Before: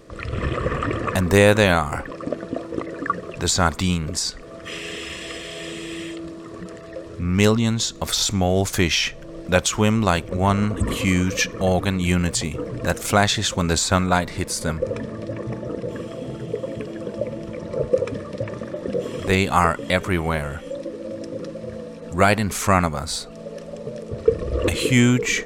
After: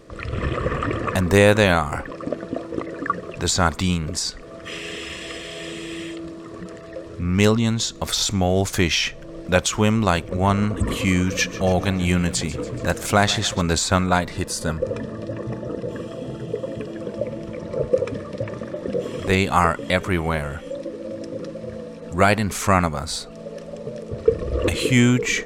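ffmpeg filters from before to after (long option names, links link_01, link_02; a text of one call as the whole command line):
ffmpeg -i in.wav -filter_complex "[0:a]asettb=1/sr,asplit=3[link_01][link_02][link_03];[link_01]atrim=end=11.174[link_04];[link_02]atrim=start=11.17:end=13.61,asetpts=PTS-STARTPTS,afade=type=in:duration=0.004:curve=qsin,afade=type=out:start_time=2.436:duration=0.004:curve=qsin,aecho=1:1:142|284|426|568|710:0.15|0.0868|0.0503|0.0292|0.0169,atrim=end_sample=107604[link_05];[link_03]atrim=start=13.606[link_06];[link_04][link_05]acrossfade=duration=0.004:curve1=hsin:curve2=qsin[link_07];[link_07][link_06]acrossfade=duration=0.004:curve1=qsin:curve2=hsin,asettb=1/sr,asplit=3[link_08][link_09][link_10];[link_08]atrim=end=14.324[link_11];[link_09]atrim=start=14.32:end=16.96,asetpts=PTS-STARTPTS,afade=type=in:duration=0.004:curve=qsin,afade=type=out:start_time=2.636:duration=0.004:curve=qsin,asuperstop=centerf=2200:order=8:qfactor=7.9[link_12];[link_10]atrim=start=16.956[link_13];[link_11][link_12]acrossfade=duration=0.004:curve1=hsin:curve2=qsin[link_14];[link_14][link_13]acrossfade=duration=0.004:curve1=qsin:curve2=hsin,highshelf=frequency=9500:gain=-3.5" out.wav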